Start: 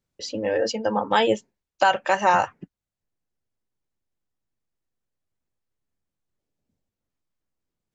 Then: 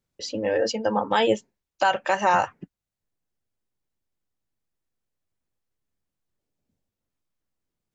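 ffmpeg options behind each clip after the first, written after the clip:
-af "alimiter=limit=-9dB:level=0:latency=1:release=63"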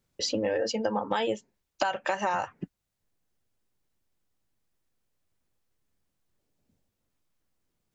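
-af "acompressor=threshold=-30dB:ratio=8,volume=5dB"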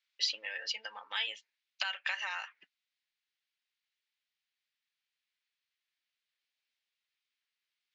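-af "asuperpass=centerf=2900:order=4:qfactor=1.1,volume=3.5dB"

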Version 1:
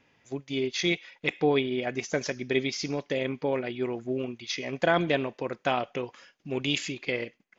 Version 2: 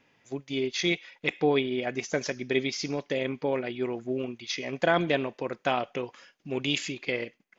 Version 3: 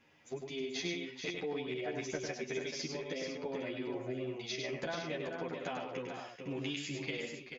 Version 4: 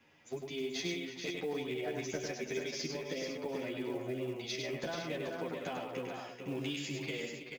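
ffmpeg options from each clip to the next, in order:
-af "equalizer=f=61:w=1.5:g=-9.5"
-filter_complex "[0:a]acompressor=threshold=-35dB:ratio=6,asplit=2[a][b];[b]aecho=0:1:101|151|435|506:0.562|0.141|0.447|0.299[c];[a][c]amix=inputs=2:normalize=0,asplit=2[d][e];[e]adelay=10.4,afreqshift=0.41[f];[d][f]amix=inputs=2:normalize=1,volume=1dB"
-filter_complex "[0:a]acrossover=split=170|620|3300[a][b][c][d];[c]asoftclip=type=tanh:threshold=-39.5dB[e];[a][b][e][d]amix=inputs=4:normalize=0,acrusher=bits=7:mode=log:mix=0:aa=0.000001,aecho=1:1:325:0.188,volume=1dB"

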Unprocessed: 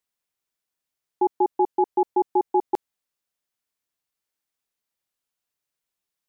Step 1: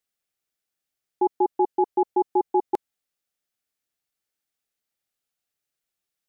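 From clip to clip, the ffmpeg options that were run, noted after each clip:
-af "bandreject=f=1k:w=5.3"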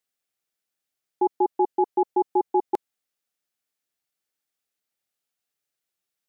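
-af "lowshelf=f=69:g=-11"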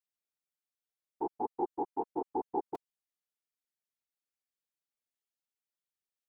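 -af "afftfilt=real='hypot(re,im)*cos(2*PI*random(0))':imag='hypot(re,im)*sin(2*PI*random(1))':win_size=512:overlap=0.75,volume=-6.5dB"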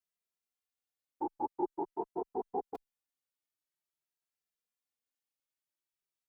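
-filter_complex "[0:a]asplit=2[a][b];[b]adelay=2.6,afreqshift=0.48[c];[a][c]amix=inputs=2:normalize=1,volume=1.5dB"

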